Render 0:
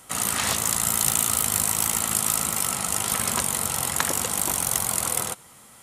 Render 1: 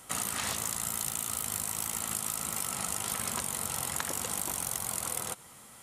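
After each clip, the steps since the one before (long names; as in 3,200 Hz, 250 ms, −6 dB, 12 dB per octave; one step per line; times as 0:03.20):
downward compressor 6 to 1, threshold −27 dBFS, peak gain reduction 11 dB
level −2.5 dB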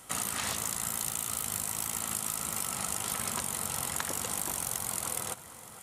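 delay that swaps between a low-pass and a high-pass 460 ms, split 2,100 Hz, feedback 54%, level −13 dB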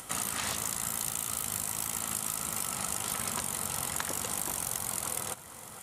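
upward compression, threshold −40 dBFS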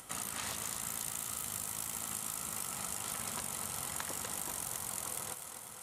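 feedback echo with a high-pass in the loop 247 ms, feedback 65%, level −8 dB
level −6.5 dB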